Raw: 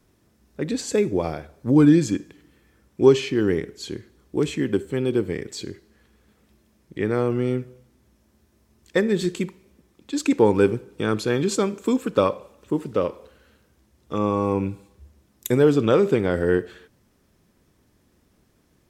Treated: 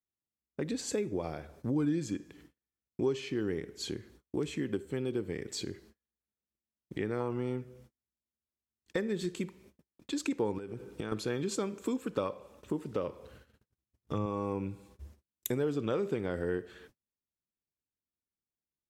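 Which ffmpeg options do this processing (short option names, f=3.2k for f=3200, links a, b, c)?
-filter_complex "[0:a]asettb=1/sr,asplit=3[a][b][c];[a]atrim=end=7.204[d];[b]atrim=start=7.2:end=7.61,asetpts=PTS-STARTPTS,afade=t=in:d=0.004:c=qsin,afade=t=out:st=0.406:d=0.004:c=qsin,equalizer=f=930:t=o:w=0.38:g=13[e];[c]atrim=start=7.606[f];[d][e]acrossfade=d=0.004:c1=hsin:c2=qsin[g];[g][f]acrossfade=d=0.004:c1=qsin:c2=hsin,asettb=1/sr,asplit=3[h][i][j];[h]atrim=end=10.584[k];[i]atrim=start=10.58:end=11.12,asetpts=PTS-STARTPTS,afade=t=in:d=0.004:c=qsin,afade=t=out:st=0.536:d=0.004:c=qsin,acompressor=threshold=-28dB:ratio=10:attack=3.2:release=140:knee=1:detection=peak[l];[j]atrim=start=11.116[m];[k][l]acrossfade=d=0.004:c1=hsin:c2=qsin[n];[n][m]acrossfade=d=0.004:c1=qsin:c2=hsin,asettb=1/sr,asplit=3[o][p][q];[o]atrim=end=13.064[r];[p]atrim=start=13.06:end=14.26,asetpts=PTS-STARTPTS,afade=t=in:d=0.004:c=qsin,afade=t=out:st=1.196:d=0.004:c=qsin,equalizer=f=110:w=1.5:g=10[s];[q]atrim=start=14.256[t];[r][s]acrossfade=d=0.004:c1=hsin:c2=qsin[u];[u][t]acrossfade=d=0.004:c1=qsin:c2=hsin,agate=range=-40dB:threshold=-52dB:ratio=16:detection=peak,acompressor=threshold=-36dB:ratio=2.5"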